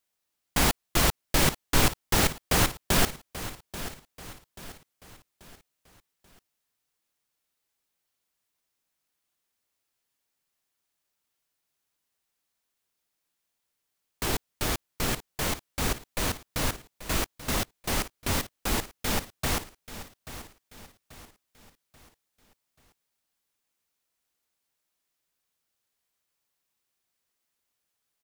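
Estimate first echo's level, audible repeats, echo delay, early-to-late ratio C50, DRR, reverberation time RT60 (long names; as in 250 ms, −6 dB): −14.0 dB, 3, 835 ms, no reverb audible, no reverb audible, no reverb audible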